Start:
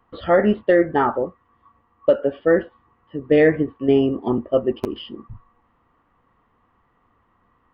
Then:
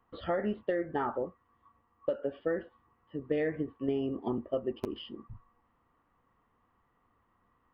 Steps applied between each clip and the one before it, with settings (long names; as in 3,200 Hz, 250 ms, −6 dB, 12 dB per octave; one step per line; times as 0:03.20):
downward compressor 5 to 1, threshold −19 dBFS, peak gain reduction 8.5 dB
level −9 dB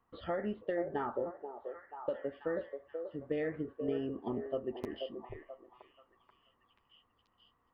echo through a band-pass that steps 484 ms, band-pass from 540 Hz, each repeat 0.7 octaves, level −4 dB
level −4.5 dB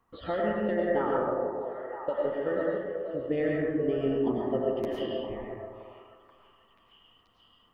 convolution reverb RT60 1.4 s, pre-delay 65 ms, DRR −2.5 dB
level +4 dB